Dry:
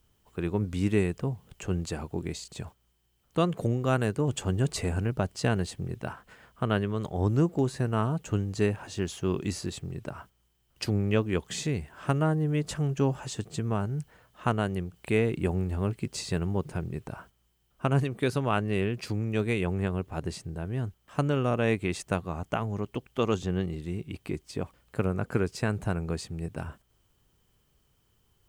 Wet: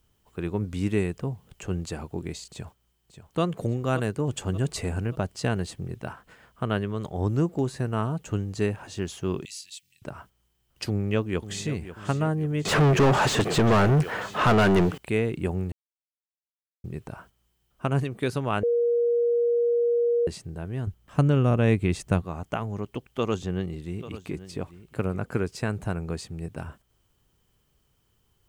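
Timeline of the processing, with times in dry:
2.49–3.41 s: echo throw 580 ms, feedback 45%, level -10.5 dB
9.45–10.02 s: inverse Chebyshev high-pass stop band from 1.3 kHz
10.88–11.74 s: echo throw 540 ms, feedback 55%, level -13 dB
12.65–14.98 s: overdrive pedal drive 38 dB, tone 1.7 kHz, clips at -11 dBFS
15.72–16.84 s: mute
18.63–20.27 s: bleep 474 Hz -19.5 dBFS
20.87–22.22 s: bass shelf 230 Hz +11 dB
23.04–25.33 s: delay 840 ms -15 dB

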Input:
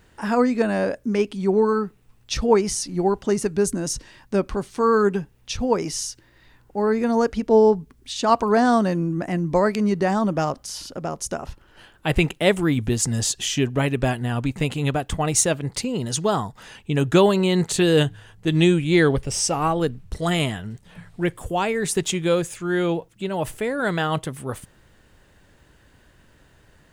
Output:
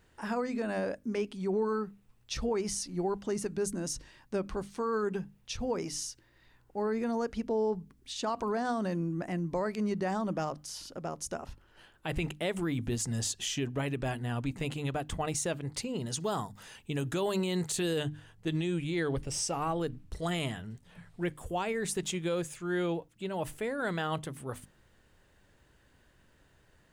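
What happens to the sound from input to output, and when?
16.20–17.98 s: treble shelf 6.7 kHz +9.5 dB
whole clip: hum notches 50/100/150/200/250/300 Hz; peak limiter -14 dBFS; trim -9 dB

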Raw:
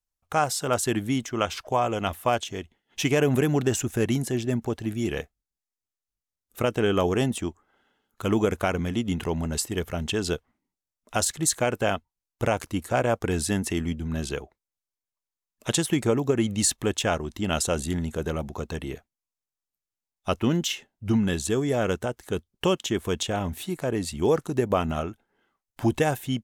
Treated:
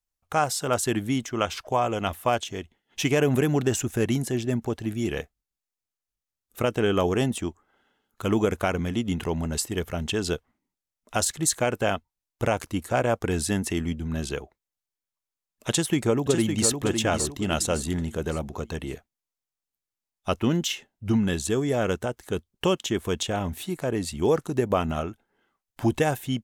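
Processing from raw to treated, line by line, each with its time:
15.70–16.71 s: echo throw 560 ms, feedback 35%, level -6 dB

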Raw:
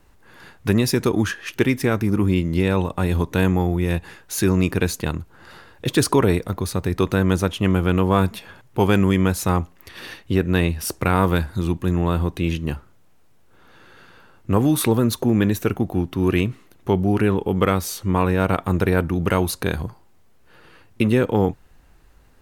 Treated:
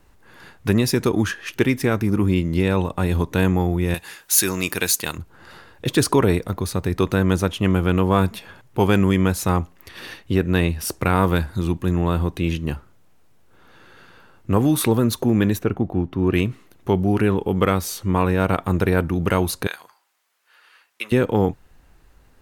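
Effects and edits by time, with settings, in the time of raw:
3.94–5.18 s: tilt EQ +3.5 dB/octave
15.59–16.34 s: low-pass 1.5 kHz 6 dB/octave
19.67–21.12 s: high-pass 1.2 kHz

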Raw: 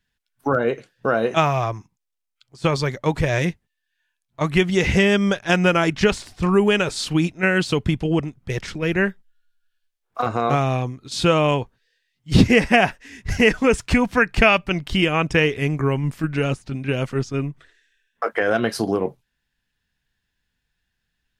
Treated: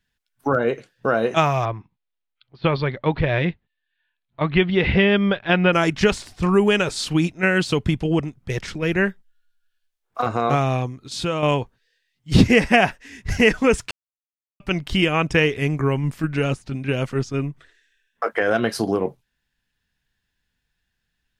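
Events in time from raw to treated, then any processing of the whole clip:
1.65–5.73 s: steep low-pass 4.2 kHz 48 dB/octave
10.86–11.43 s: compression 1.5:1, threshold -31 dBFS
13.91–14.60 s: mute

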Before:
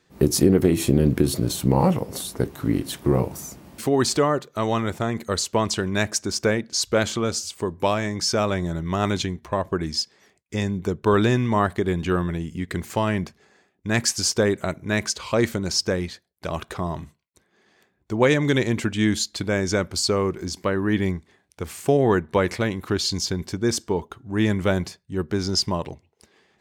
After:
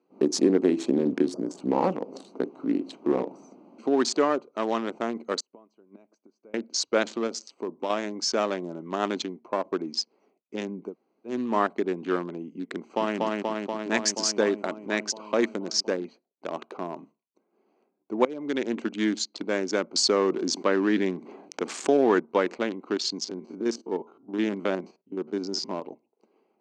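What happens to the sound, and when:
1.32–1.57 s: spectral selection erased 1.8–4.5 kHz
5.40–6.54 s: inverted gate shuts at -18 dBFS, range -27 dB
7.27–7.90 s: compression 2.5:1, threshold -23 dBFS
10.88–11.32 s: room tone, crossfade 0.16 s
12.76–13.18 s: echo throw 240 ms, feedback 80%, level -1 dB
18.25–18.75 s: fade in, from -19 dB
19.95–22.20 s: level flattener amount 50%
23.24–25.83 s: spectrogram pixelated in time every 50 ms
whole clip: local Wiener filter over 25 samples; elliptic band-pass 250–6700 Hz, stop band 50 dB; trim -1.5 dB

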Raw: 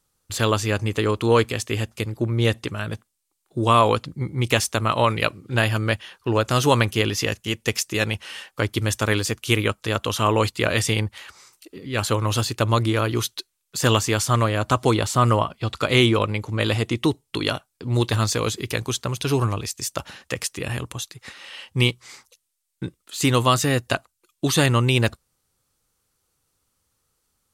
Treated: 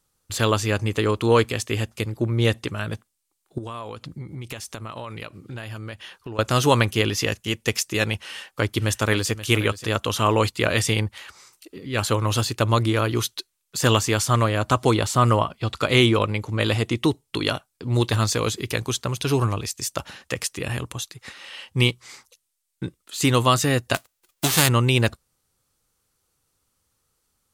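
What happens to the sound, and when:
3.58–6.39 s: compression 8:1, threshold -31 dBFS
8.26–9.31 s: echo throw 530 ms, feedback 10%, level -14 dB
23.94–24.67 s: formants flattened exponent 0.3

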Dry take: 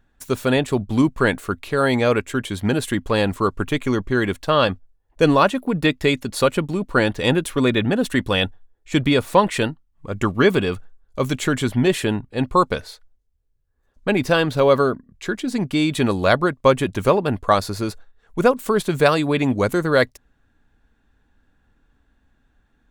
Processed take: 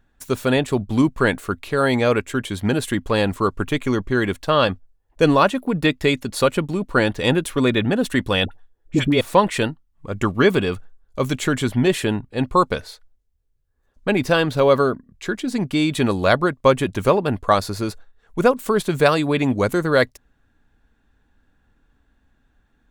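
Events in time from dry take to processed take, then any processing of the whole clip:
8.45–9.21 s: phase dispersion highs, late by 64 ms, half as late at 740 Hz

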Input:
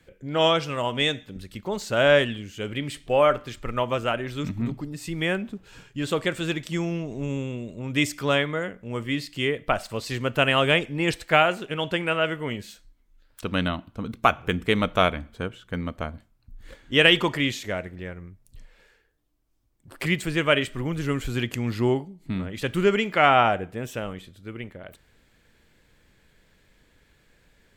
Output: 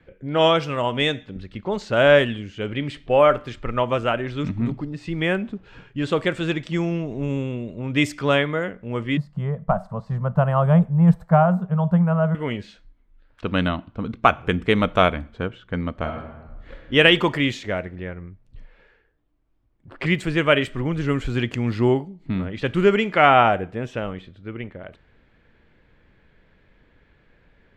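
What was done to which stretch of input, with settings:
9.17–12.35 s: FFT filter 110 Hz 0 dB, 180 Hz +15 dB, 290 Hz -22 dB, 630 Hz 0 dB, 1.1 kHz 0 dB, 2.5 kHz -27 dB, 7.5 kHz -17 dB, 14 kHz -6 dB
15.92–16.93 s: reverb throw, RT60 1.2 s, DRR 3 dB
whole clip: level-controlled noise filter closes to 3 kHz, open at -19 dBFS; treble shelf 4.7 kHz -11 dB; trim +4 dB

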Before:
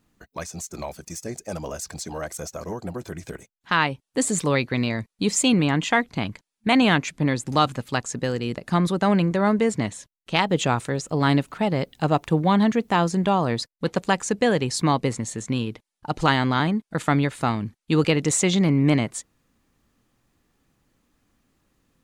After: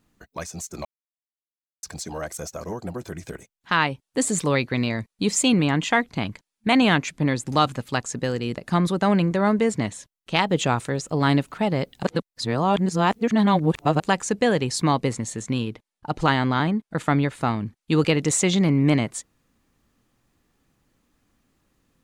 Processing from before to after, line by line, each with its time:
0.85–1.83 s: mute
12.03–14.00 s: reverse
15.70–17.77 s: treble shelf 3.3 kHz -5 dB

